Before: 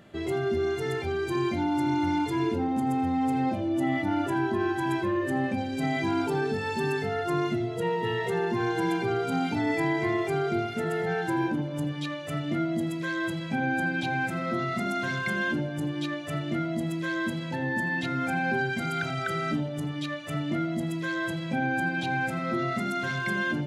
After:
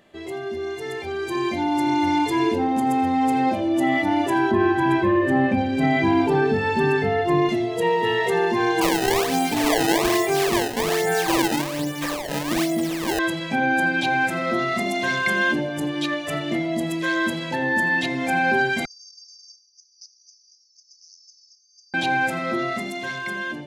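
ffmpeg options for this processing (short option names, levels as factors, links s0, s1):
-filter_complex "[0:a]asettb=1/sr,asplit=3[s0][s1][s2];[s0]atrim=end=4.514[s3];[s1]atrim=start=4.51:end=7.49,asetpts=PTS-STARTPTS,afade=t=in:d=0.004:c=qsin,afade=t=out:st=2.976:d=0.004:c=qsin,bass=f=250:g=9,treble=f=4000:g=-12[s4];[s2]atrim=start=7.486[s5];[s3][s4]acrossfade=d=0.004:c1=hsin:c2=qsin[s6];[s6][s5]acrossfade=d=0.004:c1=qsin:c2=hsin,asettb=1/sr,asplit=3[s7][s8][s9];[s7]atrim=end=8.814[s10];[s8]atrim=start=8.81:end=13.19,asetpts=PTS-STARTPTS,afade=t=in:d=0.004:c=qsin,afade=t=out:st=4.376:d=0.004:c=qsin,acrusher=samples=22:mix=1:aa=0.000001:lfo=1:lforange=35.2:lforate=1.2[s11];[s9]atrim=start=13.186[s12];[s10][s11]acrossfade=d=0.004:c1=hsin:c2=qsin[s13];[s13][s12]acrossfade=d=0.004:c1=qsin:c2=hsin,asettb=1/sr,asplit=3[s14][s15][s16];[s14]atrim=end=18.854[s17];[s15]atrim=start=18.85:end=21.94,asetpts=PTS-STARTPTS,afade=t=in:d=0.004:c=qsin,afade=t=out:st=3.086:d=0.004:c=qsin,asuperpass=centerf=5500:order=12:qfactor=3.4[s18];[s16]atrim=start=21.936[s19];[s17][s18]acrossfade=d=0.004:c1=hsin:c2=qsin[s20];[s20][s19]acrossfade=d=0.004:c1=qsin:c2=hsin,equalizer=f=120:w=0.7:g=-12,bandreject=f=1400:w=7.5,dynaudnorm=f=260:g=11:m=2.99"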